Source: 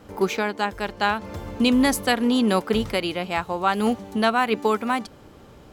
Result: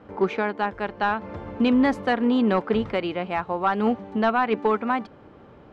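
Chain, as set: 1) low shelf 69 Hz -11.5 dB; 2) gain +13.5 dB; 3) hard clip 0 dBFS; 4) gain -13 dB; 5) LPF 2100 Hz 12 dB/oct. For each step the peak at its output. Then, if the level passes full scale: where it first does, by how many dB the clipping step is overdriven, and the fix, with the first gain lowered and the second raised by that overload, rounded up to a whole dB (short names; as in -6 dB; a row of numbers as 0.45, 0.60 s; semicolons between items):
-6.5, +7.0, 0.0, -13.0, -12.5 dBFS; step 2, 7.0 dB; step 2 +6.5 dB, step 4 -6 dB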